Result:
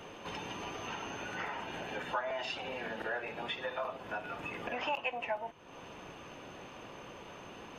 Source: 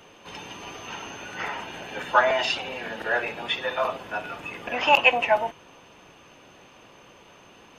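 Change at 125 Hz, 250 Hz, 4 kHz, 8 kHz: −4.0, −5.5, −13.0, −9.0 decibels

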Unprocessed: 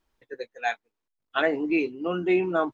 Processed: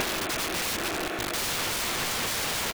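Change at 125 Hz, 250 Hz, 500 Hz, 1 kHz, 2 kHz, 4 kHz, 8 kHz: +1.5 dB, −9.5 dB, −8.5 dB, −0.5 dB, +1.0 dB, +12.5 dB, can't be measured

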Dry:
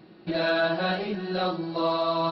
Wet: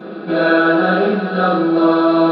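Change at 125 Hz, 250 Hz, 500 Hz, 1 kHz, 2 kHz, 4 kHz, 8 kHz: +10.5 dB, +16.5 dB, +11.0 dB, +10.0 dB, +12.5 dB, +3.0 dB, can't be measured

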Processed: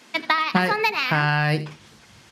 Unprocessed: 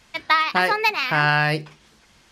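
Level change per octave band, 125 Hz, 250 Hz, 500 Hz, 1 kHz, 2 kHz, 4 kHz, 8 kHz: +3.0, +4.0, −0.5, −2.0, −2.5, −1.5, −1.5 decibels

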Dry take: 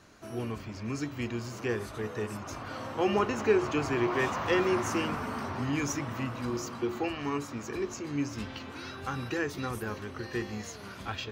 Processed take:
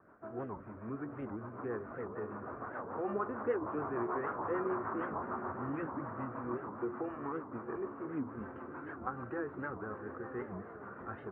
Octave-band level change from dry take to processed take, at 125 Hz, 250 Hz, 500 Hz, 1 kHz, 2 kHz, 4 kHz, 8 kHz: −10.5 dB, −7.5 dB, −7.0 dB, −4.5 dB, −10.5 dB, below −35 dB, below −40 dB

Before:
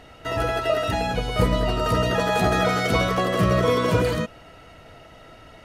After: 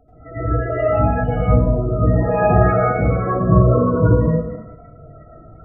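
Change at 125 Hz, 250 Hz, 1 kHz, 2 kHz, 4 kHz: +9.5 dB, +6.0 dB, +3.0 dB, −2.5 dB, below −25 dB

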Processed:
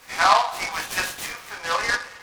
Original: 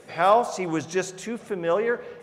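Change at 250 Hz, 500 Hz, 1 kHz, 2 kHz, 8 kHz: −13.5, −8.5, +3.0, +8.5, +6.5 decibels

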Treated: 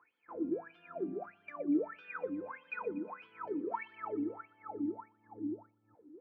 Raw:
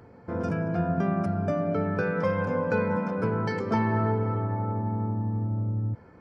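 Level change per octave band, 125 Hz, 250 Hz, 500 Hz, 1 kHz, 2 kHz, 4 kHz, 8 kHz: −33.5 dB, −9.0 dB, −12.5 dB, −13.0 dB, −12.5 dB, below −15 dB, can't be measured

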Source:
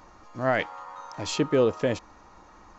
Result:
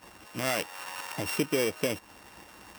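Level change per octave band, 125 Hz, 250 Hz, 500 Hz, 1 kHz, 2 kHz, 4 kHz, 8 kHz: −6.0 dB, −4.5 dB, −6.5 dB, −5.5 dB, −1.5 dB, +1.0 dB, can't be measured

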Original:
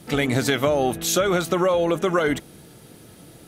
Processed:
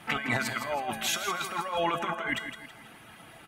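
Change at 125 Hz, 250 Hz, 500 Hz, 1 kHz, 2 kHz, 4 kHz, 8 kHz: −13.5, −14.0, −14.5, −4.0, −3.0, −5.0, −8.5 decibels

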